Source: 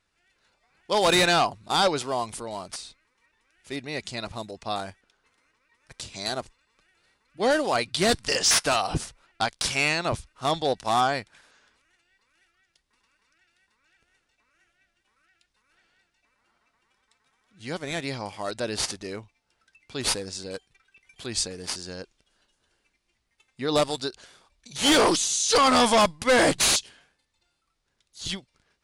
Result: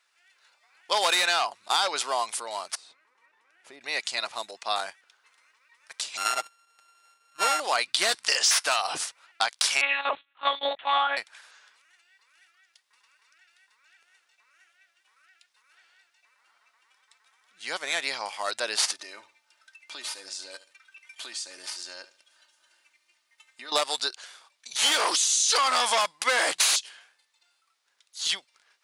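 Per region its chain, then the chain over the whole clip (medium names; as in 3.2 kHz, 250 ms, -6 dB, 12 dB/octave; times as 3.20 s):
2.75–3.81 s: compression 5:1, threshold -46 dBFS + tilt shelf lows +10 dB, about 1.4 kHz
6.17–7.60 s: sorted samples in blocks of 32 samples + low-pass 11 kHz 24 dB/octave + comb 6.4 ms, depth 32%
9.81–11.17 s: companding laws mixed up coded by A + comb 6.9 ms, depth 70% + monotone LPC vocoder at 8 kHz 280 Hz
18.92–23.72 s: comb 3.3 ms, depth 69% + compression 5:1, threshold -39 dBFS + feedback delay 72 ms, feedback 28%, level -15.5 dB
whole clip: high-pass 910 Hz 12 dB/octave; compression 6:1, threshold -26 dBFS; trim +6 dB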